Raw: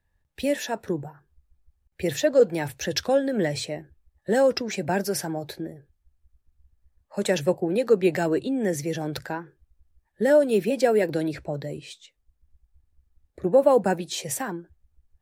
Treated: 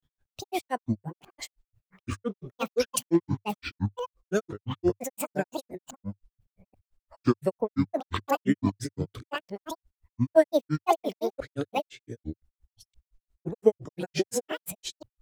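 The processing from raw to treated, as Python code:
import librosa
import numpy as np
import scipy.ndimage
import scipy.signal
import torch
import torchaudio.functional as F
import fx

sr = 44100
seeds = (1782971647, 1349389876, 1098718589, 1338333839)

y = fx.reverse_delay(x, sr, ms=518, wet_db=-2.5)
y = fx.granulator(y, sr, seeds[0], grain_ms=100.0, per_s=5.8, spray_ms=11.0, spread_st=12)
y = fx.dynamic_eq(y, sr, hz=100.0, q=4.1, threshold_db=-45.0, ratio=4.0, max_db=3)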